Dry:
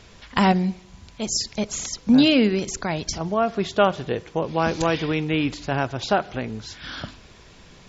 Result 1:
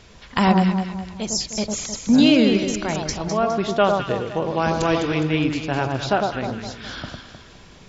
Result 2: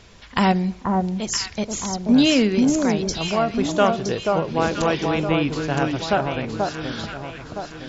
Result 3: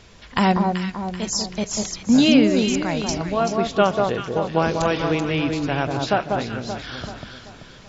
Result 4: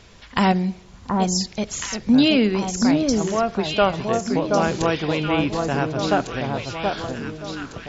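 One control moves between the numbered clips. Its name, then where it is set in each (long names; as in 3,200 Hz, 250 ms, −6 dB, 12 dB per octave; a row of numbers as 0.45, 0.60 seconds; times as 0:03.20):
delay that swaps between a low-pass and a high-pass, delay time: 103, 483, 192, 726 milliseconds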